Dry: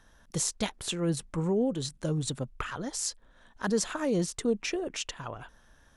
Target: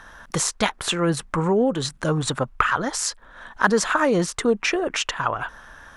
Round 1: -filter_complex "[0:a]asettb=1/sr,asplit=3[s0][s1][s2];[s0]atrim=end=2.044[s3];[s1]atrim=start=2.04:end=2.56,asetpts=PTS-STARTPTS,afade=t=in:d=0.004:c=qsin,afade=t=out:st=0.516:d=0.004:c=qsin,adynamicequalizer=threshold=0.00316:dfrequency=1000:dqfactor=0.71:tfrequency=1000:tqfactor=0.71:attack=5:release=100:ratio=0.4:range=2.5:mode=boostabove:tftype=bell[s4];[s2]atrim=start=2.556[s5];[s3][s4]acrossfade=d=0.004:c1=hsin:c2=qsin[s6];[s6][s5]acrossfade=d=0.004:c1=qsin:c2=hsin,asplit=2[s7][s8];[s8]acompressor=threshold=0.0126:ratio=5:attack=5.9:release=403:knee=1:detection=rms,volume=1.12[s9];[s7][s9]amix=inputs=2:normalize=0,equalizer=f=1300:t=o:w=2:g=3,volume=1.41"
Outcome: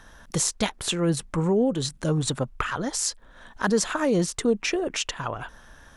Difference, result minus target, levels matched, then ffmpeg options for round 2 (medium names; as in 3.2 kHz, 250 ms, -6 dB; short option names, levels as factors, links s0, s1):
1 kHz band -5.0 dB
-filter_complex "[0:a]asettb=1/sr,asplit=3[s0][s1][s2];[s0]atrim=end=2.044[s3];[s1]atrim=start=2.04:end=2.56,asetpts=PTS-STARTPTS,afade=t=in:d=0.004:c=qsin,afade=t=out:st=0.516:d=0.004:c=qsin,adynamicequalizer=threshold=0.00316:dfrequency=1000:dqfactor=0.71:tfrequency=1000:tqfactor=0.71:attack=5:release=100:ratio=0.4:range=2.5:mode=boostabove:tftype=bell[s4];[s2]atrim=start=2.556[s5];[s3][s4]acrossfade=d=0.004:c1=hsin:c2=qsin[s6];[s6][s5]acrossfade=d=0.004:c1=qsin:c2=hsin,asplit=2[s7][s8];[s8]acompressor=threshold=0.0126:ratio=5:attack=5.9:release=403:knee=1:detection=rms,volume=1.12[s9];[s7][s9]amix=inputs=2:normalize=0,equalizer=f=1300:t=o:w=2:g=12.5,volume=1.41"